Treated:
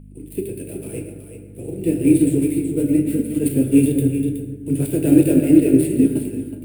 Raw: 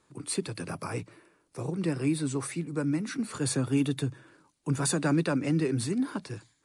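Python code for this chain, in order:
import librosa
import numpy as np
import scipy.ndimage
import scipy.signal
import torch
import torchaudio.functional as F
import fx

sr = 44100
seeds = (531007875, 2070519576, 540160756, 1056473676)

p1 = fx.dead_time(x, sr, dead_ms=0.08)
p2 = fx.curve_eq(p1, sr, hz=(230.0, 330.0, 590.0, 1100.0, 2600.0, 3900.0, 6200.0, 8900.0), db=(0, 9, 1, -27, 2, -9, -15, 12))
p3 = fx.rev_fdn(p2, sr, rt60_s=1.6, lf_ratio=1.35, hf_ratio=0.5, size_ms=66.0, drr_db=0.0)
p4 = fx.add_hum(p3, sr, base_hz=50, snr_db=11)
p5 = fx.peak_eq(p4, sr, hz=61.0, db=-8.5, octaves=0.97)
p6 = p5 + fx.echo_single(p5, sr, ms=371, db=-6.5, dry=0)
p7 = fx.upward_expand(p6, sr, threshold_db=-34.0, expansion=1.5)
y = F.gain(torch.from_numpy(p7), 6.0).numpy()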